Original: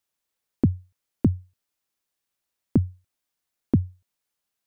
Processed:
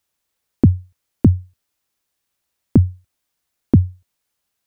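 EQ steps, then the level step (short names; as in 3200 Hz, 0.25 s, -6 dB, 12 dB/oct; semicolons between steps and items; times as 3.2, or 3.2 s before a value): bell 69 Hz +5.5 dB 1.4 oct; +6.5 dB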